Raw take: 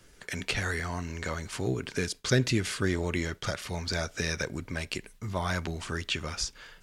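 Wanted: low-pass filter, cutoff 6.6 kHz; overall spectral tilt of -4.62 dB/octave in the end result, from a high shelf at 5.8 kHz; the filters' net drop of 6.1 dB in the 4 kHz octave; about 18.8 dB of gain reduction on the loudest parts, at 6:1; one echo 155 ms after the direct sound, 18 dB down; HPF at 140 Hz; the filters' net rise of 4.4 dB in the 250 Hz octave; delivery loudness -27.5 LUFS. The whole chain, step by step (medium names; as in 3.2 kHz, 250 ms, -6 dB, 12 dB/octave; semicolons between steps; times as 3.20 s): high-pass 140 Hz; low-pass 6.6 kHz; peaking EQ 250 Hz +6.5 dB; peaking EQ 4 kHz -5.5 dB; treble shelf 5.8 kHz -4.5 dB; compression 6:1, threshold -38 dBFS; delay 155 ms -18 dB; trim +15 dB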